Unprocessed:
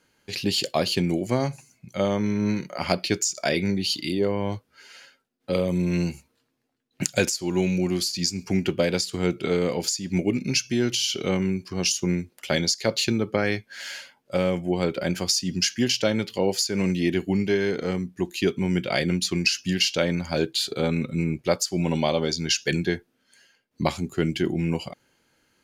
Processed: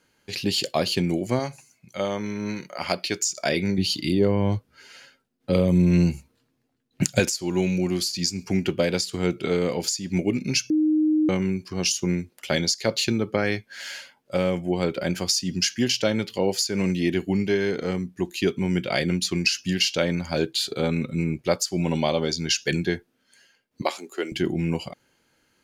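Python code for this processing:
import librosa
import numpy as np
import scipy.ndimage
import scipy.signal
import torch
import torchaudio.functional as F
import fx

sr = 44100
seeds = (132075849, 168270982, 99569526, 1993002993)

y = fx.low_shelf(x, sr, hz=340.0, db=-8.5, at=(1.39, 3.22))
y = fx.low_shelf(y, sr, hz=240.0, db=9.5, at=(3.78, 7.2))
y = fx.highpass(y, sr, hz=360.0, slope=24, at=(23.82, 24.32))
y = fx.edit(y, sr, fx.bleep(start_s=10.7, length_s=0.59, hz=309.0, db=-17.0), tone=tone)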